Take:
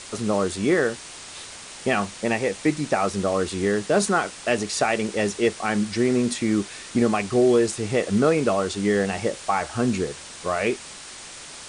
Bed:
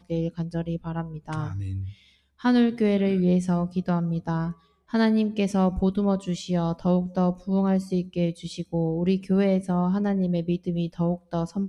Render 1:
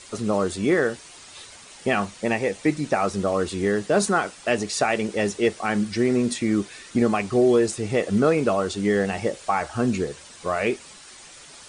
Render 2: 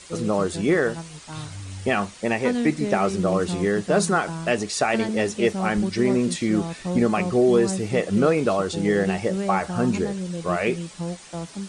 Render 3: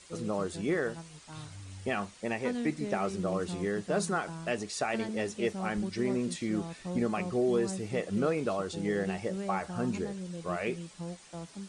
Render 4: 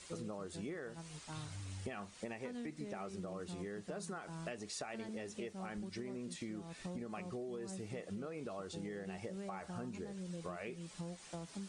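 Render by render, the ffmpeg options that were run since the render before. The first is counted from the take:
ffmpeg -i in.wav -af "afftdn=noise_reduction=8:noise_floor=-40" out.wav
ffmpeg -i in.wav -i bed.wav -filter_complex "[1:a]volume=-5.5dB[link_01];[0:a][link_01]amix=inputs=2:normalize=0" out.wav
ffmpeg -i in.wav -af "volume=-10dB" out.wav
ffmpeg -i in.wav -af "alimiter=limit=-22.5dB:level=0:latency=1:release=149,acompressor=threshold=-41dB:ratio=10" out.wav

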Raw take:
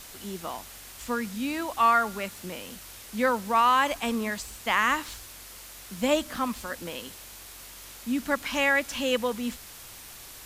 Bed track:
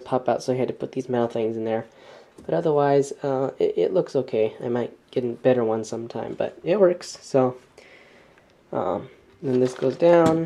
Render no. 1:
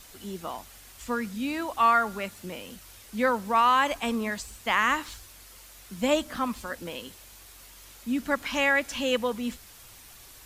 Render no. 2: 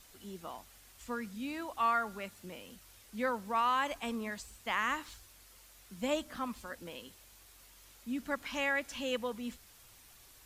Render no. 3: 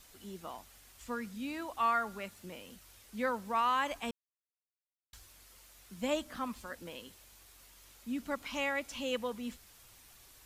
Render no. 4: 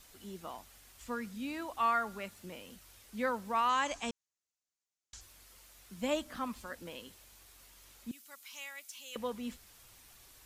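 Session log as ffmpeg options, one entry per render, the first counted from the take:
ffmpeg -i in.wav -af "afftdn=noise_reduction=6:noise_floor=-46" out.wav
ffmpeg -i in.wav -af "volume=-9dB" out.wav
ffmpeg -i in.wav -filter_complex "[0:a]asettb=1/sr,asplit=3[link_01][link_02][link_03];[link_01]atrim=end=8.224[link_04];[link_02]atrim=start=8.22:end=9.14,asetpts=PTS-STARTPTS,afade=type=in:duration=0.004:curve=qsin,afade=type=out:start_time=0.916:duration=0.004:curve=qsin,equalizer=frequency=1700:width=5.6:gain=-8[link_05];[link_03]atrim=start=9.136[link_06];[link_04][link_05]acrossfade=duration=0.004:curve1=hsin:curve2=qsin[link_07];[link_07][link_06]acrossfade=duration=0.004:curve1=qsin:curve2=hsin,asplit=3[link_08][link_09][link_10];[link_08]atrim=end=4.11,asetpts=PTS-STARTPTS,afade=type=out:start_time=4.106:duration=0.004:curve=hsin[link_11];[link_09]atrim=start=4.11:end=5.13,asetpts=PTS-STARTPTS,volume=0[link_12];[link_10]atrim=start=5.13,asetpts=PTS-STARTPTS,afade=type=in:duration=0.004:curve=hsin[link_13];[link_11][link_12][link_13]concat=n=3:v=0:a=1" out.wav
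ffmpeg -i in.wav -filter_complex "[0:a]asettb=1/sr,asplit=3[link_01][link_02][link_03];[link_01]atrim=end=3.694[link_04];[link_02]atrim=start=3.69:end=5.21,asetpts=PTS-STARTPTS,afade=type=in:duration=0.004:curve=qsin,afade=type=out:start_time=1.516:duration=0.004:curve=qsin,lowpass=frequency=6800:width_type=q:width=3.2[link_05];[link_03]atrim=start=5.206[link_06];[link_04][link_05]acrossfade=duration=0.004:curve1=hsin:curve2=qsin[link_07];[link_07][link_06]acrossfade=duration=0.004:curve1=qsin:curve2=hsin,asettb=1/sr,asplit=3[link_08][link_09][link_10];[link_08]atrim=end=8.114[link_11];[link_09]atrim=start=8.11:end=9.16,asetpts=PTS-STARTPTS,afade=type=in:duration=0.004:curve=qsin,afade=type=out:start_time=1.046:duration=0.004:curve=qsin,aderivative[link_12];[link_10]atrim=start=9.156[link_13];[link_11][link_12]acrossfade=duration=0.004:curve1=hsin:curve2=qsin[link_14];[link_14][link_13]acrossfade=duration=0.004:curve1=qsin:curve2=hsin" out.wav

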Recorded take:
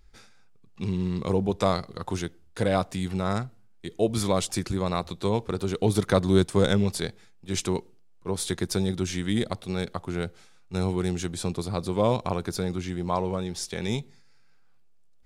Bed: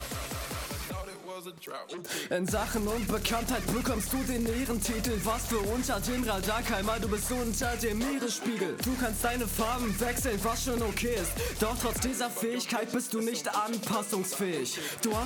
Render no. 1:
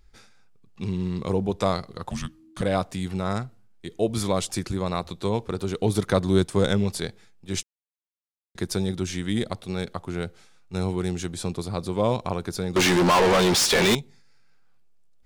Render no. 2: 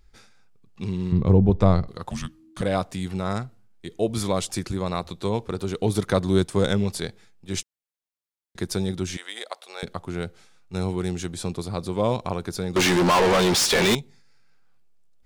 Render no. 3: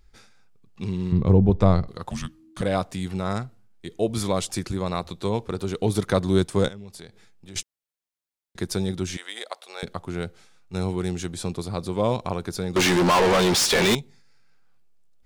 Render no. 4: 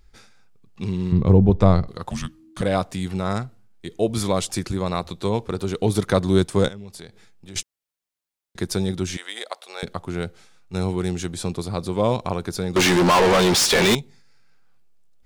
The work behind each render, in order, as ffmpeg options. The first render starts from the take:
ffmpeg -i in.wav -filter_complex "[0:a]asplit=3[link_01][link_02][link_03];[link_01]afade=type=out:start_time=2.09:duration=0.02[link_04];[link_02]afreqshift=-320,afade=type=in:start_time=2.09:duration=0.02,afade=type=out:start_time=2.61:duration=0.02[link_05];[link_03]afade=type=in:start_time=2.61:duration=0.02[link_06];[link_04][link_05][link_06]amix=inputs=3:normalize=0,asettb=1/sr,asplit=3[link_07][link_08][link_09];[link_07]atrim=end=12.764[link_10];[link_08]atrim=start=12.76:end=13.95,asetpts=PTS-STARTPTS,afade=type=in:duration=0.004:curve=qsin,afade=type=out:start_time=1.186:duration=0.004:curve=qsin,asplit=2[link_11][link_12];[link_12]highpass=frequency=720:poles=1,volume=39dB,asoftclip=type=tanh:threshold=-11.5dB[link_13];[link_11][link_13]amix=inputs=2:normalize=0,lowpass=frequency=6200:poles=1,volume=-6dB[link_14];[link_09]atrim=start=13.946[link_15];[link_10][link_14]acrossfade=duration=0.004:curve1=hsin:curve2=qsin[link_16];[link_16][link_15]acrossfade=duration=0.004:curve1=qsin:curve2=hsin,asplit=3[link_17][link_18][link_19];[link_17]atrim=end=7.63,asetpts=PTS-STARTPTS,afade=type=out:start_time=7.626:duration=0.004:curve=hsin[link_20];[link_18]atrim=start=7.63:end=8.55,asetpts=PTS-STARTPTS,volume=0[link_21];[link_19]atrim=start=8.55,asetpts=PTS-STARTPTS,afade=type=in:duration=0.004:curve=hsin[link_22];[link_20][link_21][link_22]concat=n=3:v=0:a=1" out.wav
ffmpeg -i in.wav -filter_complex "[0:a]asettb=1/sr,asplit=3[link_01][link_02][link_03];[link_01]atrim=end=1.124[link_04];[link_02]atrim=start=1.12:end=1.88,asetpts=PTS-STARTPTS,afade=type=in:duration=0.004:curve=qsin,afade=type=out:start_time=0.756:duration=0.004:curve=qsin,aemphasis=mode=reproduction:type=riaa[link_05];[link_03]atrim=start=1.876[link_06];[link_04][link_05]acrossfade=duration=0.004:curve1=hsin:curve2=qsin[link_07];[link_07][link_06]acrossfade=duration=0.004:curve1=qsin:curve2=hsin,asettb=1/sr,asplit=3[link_08][link_09][link_10];[link_08]atrim=end=9.174[link_11];[link_09]atrim=start=9.17:end=9.83,asetpts=PTS-STARTPTS,afade=type=in:duration=0.004:curve=qsin,afade=type=out:start_time=0.656:duration=0.004:curve=qsin,highpass=frequency=570:width=0.5412,highpass=frequency=570:width=1.3066[link_12];[link_10]atrim=start=9.826[link_13];[link_11][link_12]acrossfade=duration=0.004:curve1=hsin:curve2=qsin[link_14];[link_14][link_13]acrossfade=duration=0.004:curve1=qsin:curve2=hsin" out.wav
ffmpeg -i in.wav -filter_complex "[0:a]asettb=1/sr,asplit=3[link_01][link_02][link_03];[link_01]atrim=end=6.684[link_04];[link_02]atrim=start=6.68:end=7.56,asetpts=PTS-STARTPTS,afade=type=in:duration=0.004:curve=qsin,afade=type=out:start_time=0.876:duration=0.004:curve=qsin,acompressor=threshold=-42dB:ratio=3:attack=3.2:release=140:knee=1:detection=peak[link_05];[link_03]atrim=start=7.556[link_06];[link_04][link_05]acrossfade=duration=0.004:curve1=hsin:curve2=qsin[link_07];[link_07][link_06]acrossfade=duration=0.004:curve1=qsin:curve2=hsin" out.wav
ffmpeg -i in.wav -af "volume=2.5dB" out.wav

